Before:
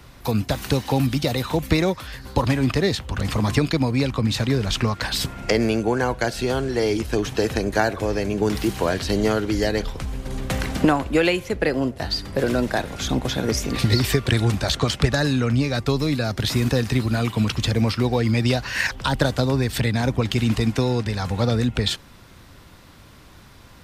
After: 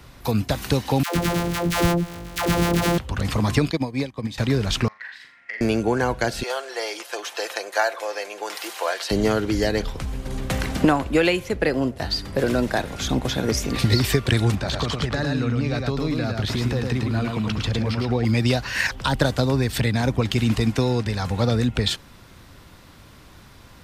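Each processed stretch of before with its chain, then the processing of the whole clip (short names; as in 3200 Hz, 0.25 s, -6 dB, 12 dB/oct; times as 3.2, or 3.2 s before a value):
1.03–2.98 sample sorter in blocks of 256 samples + dispersion lows, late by 0.131 s, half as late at 550 Hz
3.71–4.38 notch comb 1400 Hz + upward expander 2.5:1, over -32 dBFS
4.88–5.61 band-pass 1900 Hz, Q 9.3 + flutter echo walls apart 7.2 m, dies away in 0.41 s
6.43–9.11 HPF 560 Hz 24 dB/oct + comb 5.8 ms, depth 37%
14.55–18.25 LPF 3300 Hz 6 dB/oct + compressor 3:1, threshold -21 dBFS + echo 0.108 s -3.5 dB
whole clip: dry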